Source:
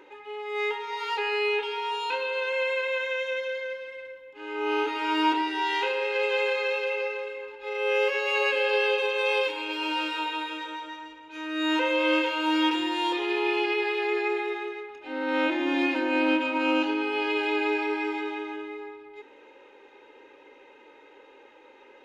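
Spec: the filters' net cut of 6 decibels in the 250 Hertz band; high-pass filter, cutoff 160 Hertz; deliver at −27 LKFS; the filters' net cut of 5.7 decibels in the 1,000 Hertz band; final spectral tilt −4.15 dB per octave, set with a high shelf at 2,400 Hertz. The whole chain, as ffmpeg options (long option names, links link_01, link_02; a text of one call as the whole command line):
ffmpeg -i in.wav -af "highpass=160,equalizer=frequency=250:width_type=o:gain=-7.5,equalizer=frequency=1000:width_type=o:gain=-5,highshelf=frequency=2400:gain=-6.5,volume=4dB" out.wav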